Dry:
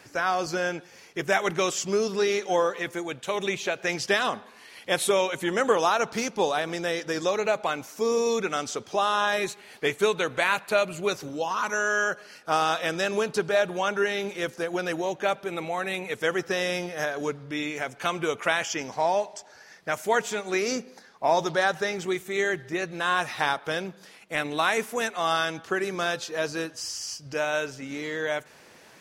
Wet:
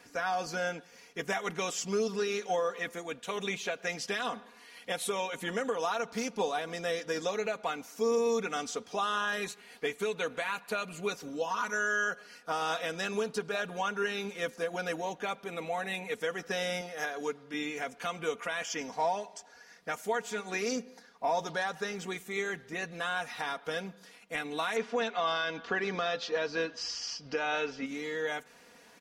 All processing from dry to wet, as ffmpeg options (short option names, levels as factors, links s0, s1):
-filter_complex "[0:a]asettb=1/sr,asplit=3[s0][s1][s2];[s0]atrim=end=16.814[s3];[s1]atrim=start=16.81:end=17.54,asetpts=PTS-STARTPTS,afade=t=in:d=0.004:c=qsin,afade=t=out:st=0.726:d=0.004:c=qsin,highpass=53,lowshelf=f=190:g=-10.5[s4];[s2]atrim=start=17.536[s5];[s3][s4]acrossfade=d=0.004:c1=hsin:c2=qsin[s6];[s6][s5]acrossfade=d=0.004:c1=qsin:c2=hsin,asettb=1/sr,asplit=3[s7][s8][s9];[s7]atrim=end=24.764[s10];[s8]atrim=start=24.76:end=27.86,asetpts=PTS-STARTPTS,afade=t=in:d=0.004:c=qsin,afade=t=out:st=3.096:d=0.004:c=qsin,lowpass=f=4900:w=0.5412,lowpass=f=4900:w=1.3066,equalizer=f=89:w=0.51:g=-5,acontrast=89[s11];[s9]atrim=start=27.856[s12];[s10][s11]acrossfade=d=0.004:c1=hsin:c2=qsin[s13];[s13][s12]acrossfade=d=0.004:c1=qsin:c2=hsin,aecho=1:1:4.2:0.67,alimiter=limit=0.188:level=0:latency=1:release=239,volume=0.473"